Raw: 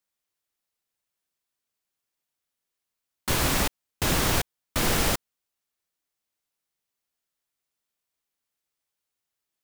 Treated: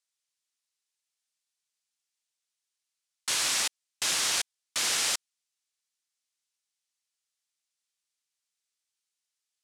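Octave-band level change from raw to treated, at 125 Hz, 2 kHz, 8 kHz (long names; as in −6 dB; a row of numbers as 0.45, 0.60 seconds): −26.5, −3.0, +2.5 decibels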